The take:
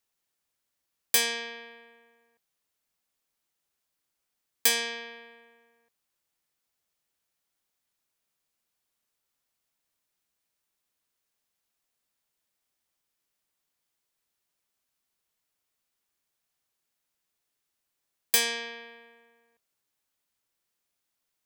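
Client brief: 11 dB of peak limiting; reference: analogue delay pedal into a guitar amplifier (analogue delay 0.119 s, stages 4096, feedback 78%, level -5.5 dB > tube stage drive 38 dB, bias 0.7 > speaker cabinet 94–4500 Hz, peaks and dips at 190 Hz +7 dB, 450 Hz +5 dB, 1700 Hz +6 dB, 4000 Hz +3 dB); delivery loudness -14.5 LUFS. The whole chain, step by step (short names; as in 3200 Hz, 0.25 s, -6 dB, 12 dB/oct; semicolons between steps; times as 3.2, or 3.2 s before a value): limiter -19.5 dBFS; analogue delay 0.119 s, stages 4096, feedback 78%, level -5.5 dB; tube stage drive 38 dB, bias 0.7; speaker cabinet 94–4500 Hz, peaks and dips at 190 Hz +7 dB, 450 Hz +5 dB, 1700 Hz +6 dB, 4000 Hz +3 dB; gain +27 dB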